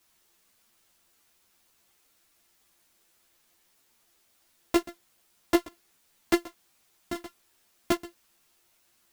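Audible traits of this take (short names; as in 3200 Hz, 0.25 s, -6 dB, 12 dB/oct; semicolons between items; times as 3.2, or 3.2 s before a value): a buzz of ramps at a fixed pitch in blocks of 128 samples; chopped level 3.5 Hz, depth 65%, duty 85%; a quantiser's noise floor 12-bit, dither triangular; a shimmering, thickened sound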